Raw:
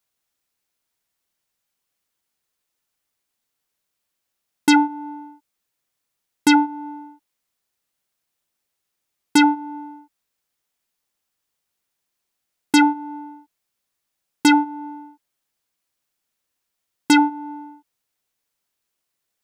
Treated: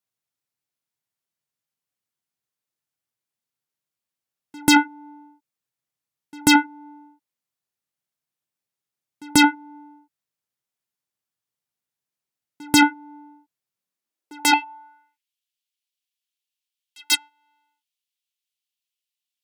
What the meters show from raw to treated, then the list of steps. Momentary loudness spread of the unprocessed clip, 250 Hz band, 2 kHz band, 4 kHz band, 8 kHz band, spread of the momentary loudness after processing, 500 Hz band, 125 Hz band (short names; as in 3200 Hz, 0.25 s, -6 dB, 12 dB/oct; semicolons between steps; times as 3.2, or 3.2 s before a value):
19 LU, -4.0 dB, +2.0 dB, +3.5 dB, +5.0 dB, 6 LU, -3.0 dB, n/a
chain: pre-echo 0.138 s -16 dB; high-pass sweep 120 Hz -> 3000 Hz, 13.73–15.29; added harmonics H 5 -36 dB, 7 -14 dB, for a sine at -0.5 dBFS